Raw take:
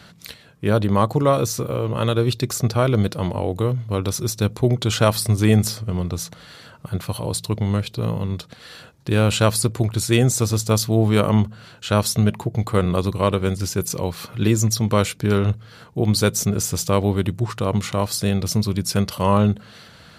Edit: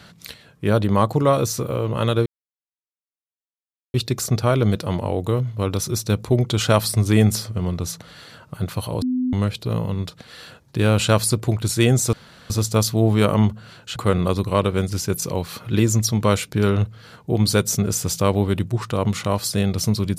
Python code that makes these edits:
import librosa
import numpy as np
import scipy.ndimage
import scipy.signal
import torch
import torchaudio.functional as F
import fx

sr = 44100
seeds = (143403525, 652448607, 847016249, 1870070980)

y = fx.edit(x, sr, fx.insert_silence(at_s=2.26, length_s=1.68),
    fx.bleep(start_s=7.34, length_s=0.31, hz=253.0, db=-18.5),
    fx.insert_room_tone(at_s=10.45, length_s=0.37),
    fx.cut(start_s=11.91, length_s=0.73), tone=tone)